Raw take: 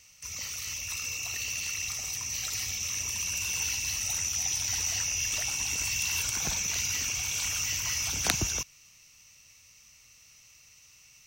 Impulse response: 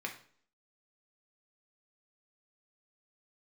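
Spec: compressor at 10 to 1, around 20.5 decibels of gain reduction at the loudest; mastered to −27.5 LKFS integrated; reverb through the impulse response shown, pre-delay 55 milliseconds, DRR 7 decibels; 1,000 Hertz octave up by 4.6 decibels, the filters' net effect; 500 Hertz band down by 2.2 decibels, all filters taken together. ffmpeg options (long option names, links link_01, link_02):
-filter_complex "[0:a]equalizer=frequency=500:width_type=o:gain=-6,equalizer=frequency=1000:width_type=o:gain=7.5,acompressor=threshold=-42dB:ratio=10,asplit=2[link_01][link_02];[1:a]atrim=start_sample=2205,adelay=55[link_03];[link_02][link_03]afir=irnorm=-1:irlink=0,volume=-9dB[link_04];[link_01][link_04]amix=inputs=2:normalize=0,volume=14.5dB"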